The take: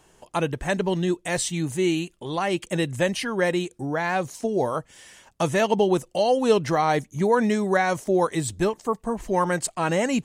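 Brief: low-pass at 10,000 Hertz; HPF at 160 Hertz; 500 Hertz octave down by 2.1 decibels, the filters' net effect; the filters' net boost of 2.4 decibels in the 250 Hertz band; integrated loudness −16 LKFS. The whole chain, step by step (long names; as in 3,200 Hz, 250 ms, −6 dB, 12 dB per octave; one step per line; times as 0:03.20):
high-pass filter 160 Hz
low-pass filter 10,000 Hz
parametric band 250 Hz +6.5 dB
parametric band 500 Hz −5 dB
level +8.5 dB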